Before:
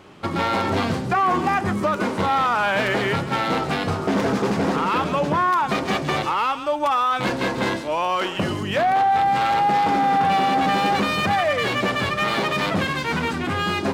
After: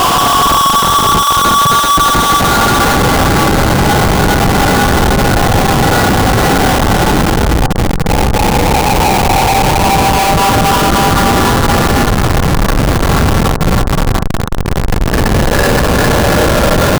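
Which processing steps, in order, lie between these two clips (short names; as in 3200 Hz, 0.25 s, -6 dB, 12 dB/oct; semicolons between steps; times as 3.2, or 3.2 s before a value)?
delta modulation 32 kbps, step -31.5 dBFS; tempo 0.82×; tilt shelf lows -3 dB, about 1400 Hz; comb 3.3 ms, depth 99%; frequency shift -120 Hz; in parallel at -5.5 dB: hard clip -21 dBFS, distortion -9 dB; on the sum: HPF 370 Hz 6 dB/oct; band shelf 1100 Hz +13.5 dB; Paulstretch 7.1×, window 0.50 s, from 8.43; Schmitt trigger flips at -9.5 dBFS; reverb, pre-delay 44 ms, DRR 12 dB; gain -1 dB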